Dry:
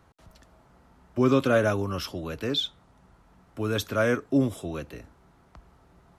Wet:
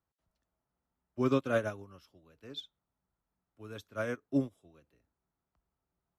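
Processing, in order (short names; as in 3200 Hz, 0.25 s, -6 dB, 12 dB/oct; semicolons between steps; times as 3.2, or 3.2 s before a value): upward expander 2.5:1, over -34 dBFS; gain -5.5 dB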